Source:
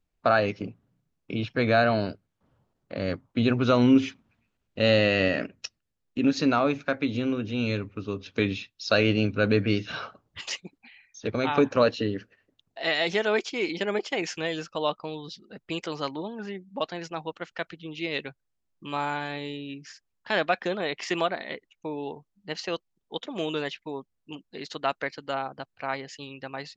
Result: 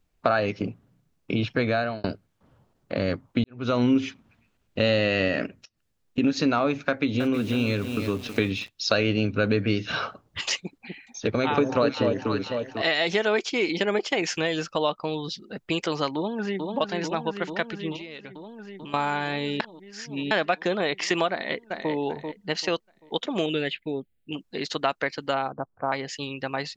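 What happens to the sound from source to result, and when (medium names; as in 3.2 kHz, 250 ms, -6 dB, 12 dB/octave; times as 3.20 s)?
1.52–2.04 s: fade out
3.44–3.85 s: fade in quadratic
5.57–6.18 s: compression 4:1, threshold -58 dBFS
6.88–8.69 s: bit-crushed delay 320 ms, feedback 35%, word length 7-bit, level -10 dB
10.57–12.82 s: echo whose repeats swap between lows and highs 248 ms, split 830 Hz, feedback 54%, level -3.5 dB
16.15–16.71 s: echo throw 440 ms, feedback 80%, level -5 dB
17.96–18.94 s: compression 8:1, threshold -43 dBFS
19.60–20.31 s: reverse
21.31–21.92 s: echo throw 390 ms, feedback 30%, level -7.5 dB
23.46–24.35 s: static phaser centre 2.5 kHz, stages 4
25.52–25.92 s: steep low-pass 1.3 kHz
whole clip: compression 2.5:1, threshold -30 dBFS; trim +7.5 dB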